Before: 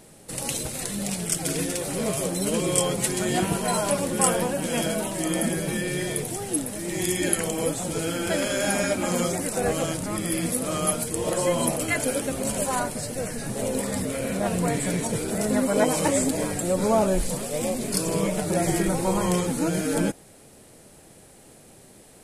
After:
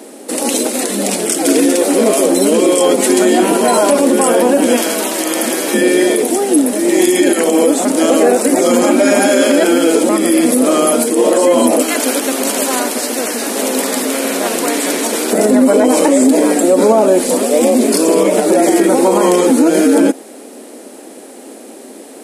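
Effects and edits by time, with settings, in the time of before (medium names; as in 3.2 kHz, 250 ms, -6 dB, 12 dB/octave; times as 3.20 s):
4.76–5.74 s: spectrum-flattening compressor 2:1
7.85–10.09 s: reverse
11.82–15.33 s: spectrum-flattening compressor 2:1
whole clip: elliptic high-pass 250 Hz, stop band 50 dB; bass shelf 490 Hz +11.5 dB; loudness maximiser +14.5 dB; trim -1 dB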